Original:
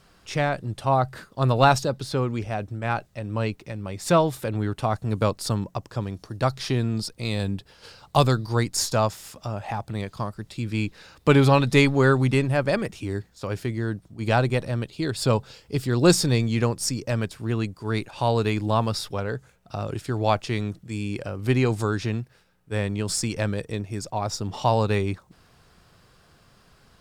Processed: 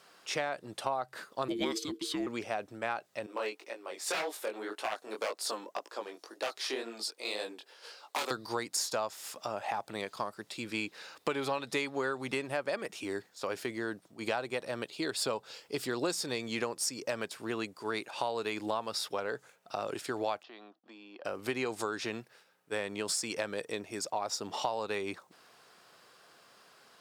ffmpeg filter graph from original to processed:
ffmpeg -i in.wav -filter_complex "[0:a]asettb=1/sr,asplit=3[link_01][link_02][link_03];[link_01]atrim=end=1.484[link_04];[link_02]atrim=start=1.48:end=2.27,asetpts=PTS-STARTPTS,afade=type=in:duration=0.004:curve=qsin,afade=type=out:start_time=0.786:duration=0.004:curve=qsin,agate=range=-33dB:threshold=-36dB:ratio=3:release=100:detection=peak,equalizer=frequency=1300:width=2.7:gain=-13.5,afreqshift=-460[link_05];[link_03]atrim=start=2.266[link_06];[link_04][link_05]acrossfade=duration=0.004:curve1=hsin:curve2=qsin[link_07];[link_07][link_06]acrossfade=duration=0.004:curve1=qsin:curve2=hsin,asettb=1/sr,asplit=3[link_08][link_09][link_10];[link_08]atrim=end=3.264[link_11];[link_09]atrim=start=3.26:end=8.31,asetpts=PTS-STARTPTS,afade=type=in:duration=0.004:curve=qsin,afade=type=out:start_time=5.046:duration=0.004:curve=qsin,highpass=frequency=300:width=0.5412,highpass=frequency=300:width=1.3066,aeval=exprs='0.112*(abs(mod(val(0)/0.112+3,4)-2)-1)':channel_layout=same,flanger=delay=16.5:depth=7.4:speed=1.9[link_12];[link_10]atrim=start=8.306[link_13];[link_11][link_12]acrossfade=duration=0.004:curve1=hsin:curve2=qsin[link_14];[link_14][link_13]acrossfade=duration=0.004:curve1=qsin:curve2=hsin,asettb=1/sr,asplit=3[link_15][link_16][link_17];[link_15]atrim=end=20.434[link_18];[link_16]atrim=start=20.43:end=21.25,asetpts=PTS-STARTPTS,afade=type=in:duration=0.004:curve=qsin,afade=type=out:start_time=0.816:duration=0.004:curve=qsin,acompressor=threshold=-38dB:ratio=4:attack=3.2:release=140:knee=1:detection=peak,agate=range=-33dB:threshold=-40dB:ratio=3:release=100:detection=peak,highpass=frequency=240:width=0.5412,highpass=frequency=240:width=1.3066,equalizer=frequency=440:width_type=q:width=4:gain=-6,equalizer=frequency=740:width_type=q:width=4:gain=9,equalizer=frequency=1100:width_type=q:width=4:gain=5,equalizer=frequency=2200:width_type=q:width=4:gain=-9,lowpass=frequency=4000:width=0.5412,lowpass=frequency=4000:width=1.3066[link_19];[link_17]atrim=start=21.246[link_20];[link_18][link_19]acrossfade=duration=0.004:curve1=hsin:curve2=qsin[link_21];[link_21][link_20]acrossfade=duration=0.004:curve1=qsin:curve2=hsin,highpass=410,acompressor=threshold=-30dB:ratio=6" out.wav

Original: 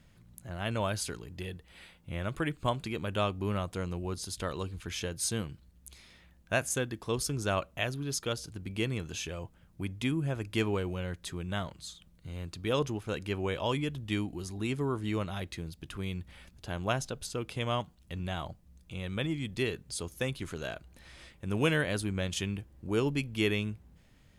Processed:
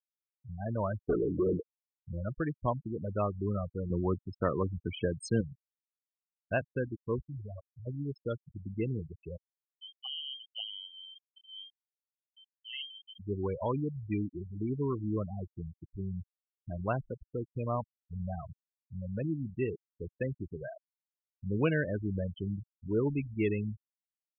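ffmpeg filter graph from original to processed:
ffmpeg -i in.wav -filter_complex "[0:a]asettb=1/sr,asplit=3[link_01][link_02][link_03];[link_01]atrim=end=1.094[link_04];[link_02]atrim=start=1.09:end=1.69,asetpts=PTS-STARTPTS,afade=type=in:duration=0.004:curve=qsin,afade=type=out:start_time=0.596:duration=0.004:curve=qsin,equalizer=frequency=330:width_type=o:width=1.8:gain=10.5,asplit=2[link_05][link_06];[link_06]highpass=frequency=720:poles=1,volume=29dB,asoftclip=type=tanh:threshold=-19.5dB[link_07];[link_05][link_07]amix=inputs=2:normalize=0,lowpass=frequency=1100:poles=1,volume=-6dB[link_08];[link_03]atrim=start=1.686[link_09];[link_04][link_08]acrossfade=duration=0.004:curve1=hsin:curve2=qsin[link_10];[link_10][link_09]acrossfade=duration=0.004:curve1=qsin:curve2=hsin,asettb=1/sr,asplit=3[link_11][link_12][link_13];[link_11]atrim=end=3.904[link_14];[link_12]atrim=start=3.9:end=5.41,asetpts=PTS-STARTPTS,afade=type=in:duration=0.004:curve=qsin,afade=type=out:start_time=1.506:duration=0.004:curve=qsin,highpass=96,acontrast=71[link_15];[link_13]atrim=start=5.406[link_16];[link_14][link_15]acrossfade=duration=0.004:curve1=hsin:curve2=qsin[link_17];[link_17][link_16]acrossfade=duration=0.004:curve1=qsin:curve2=hsin,asettb=1/sr,asplit=3[link_18][link_19][link_20];[link_18]atrim=end=7.214[link_21];[link_19]atrim=start=7.21:end=7.87,asetpts=PTS-STARTPTS,afade=type=in:duration=0.004:curve=qsin,afade=type=out:start_time=0.656:duration=0.004:curve=qsin,asoftclip=type=hard:threshold=-28dB,acompressor=threshold=-35dB:ratio=3:attack=3.2:release=140:knee=1:detection=peak,equalizer=frequency=590:width=0.41:gain=-5[link_22];[link_20]atrim=start=7.866[link_23];[link_21][link_22]acrossfade=duration=0.004:curve1=hsin:curve2=qsin[link_24];[link_24][link_23]acrossfade=duration=0.004:curve1=qsin:curve2=hsin,asettb=1/sr,asplit=3[link_25][link_26][link_27];[link_25]atrim=end=9.374[link_28];[link_26]atrim=start=9.37:end=13.19,asetpts=PTS-STARTPTS,afade=type=in:duration=0.004:curve=qsin,afade=type=out:start_time=3.816:duration=0.004:curve=qsin,equalizer=frequency=430:width_type=o:width=0.49:gain=-10,aeval=exprs='max(val(0),0)':channel_layout=same,lowpass=frequency=2700:width_type=q:width=0.5098,lowpass=frequency=2700:width_type=q:width=0.6013,lowpass=frequency=2700:width_type=q:width=0.9,lowpass=frequency=2700:width_type=q:width=2.563,afreqshift=-3200[link_29];[link_27]atrim=start=13.186[link_30];[link_28][link_29]acrossfade=duration=0.004:curve1=hsin:curve2=qsin[link_31];[link_31][link_30]acrossfade=duration=0.004:curve1=qsin:curve2=hsin,lowpass=frequency=2000:poles=1,afftfilt=real='re*gte(hypot(re,im),0.0501)':imag='im*gte(hypot(re,im),0.0501)':win_size=1024:overlap=0.75" out.wav

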